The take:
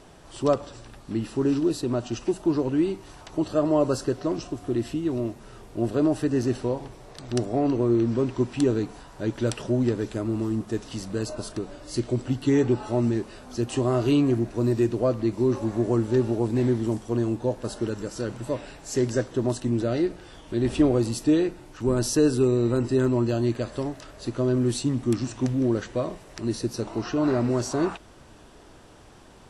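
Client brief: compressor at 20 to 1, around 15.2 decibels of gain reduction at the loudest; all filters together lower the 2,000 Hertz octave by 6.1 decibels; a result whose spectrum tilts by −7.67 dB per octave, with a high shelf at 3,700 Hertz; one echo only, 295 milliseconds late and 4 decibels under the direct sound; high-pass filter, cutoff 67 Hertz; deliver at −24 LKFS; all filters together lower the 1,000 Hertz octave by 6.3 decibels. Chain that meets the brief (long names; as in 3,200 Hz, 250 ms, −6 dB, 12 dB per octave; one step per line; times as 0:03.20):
high-pass filter 67 Hz
parametric band 1,000 Hz −7.5 dB
parametric band 2,000 Hz −4 dB
high-shelf EQ 3,700 Hz −5.5 dB
downward compressor 20 to 1, threshold −31 dBFS
single-tap delay 295 ms −4 dB
level +12 dB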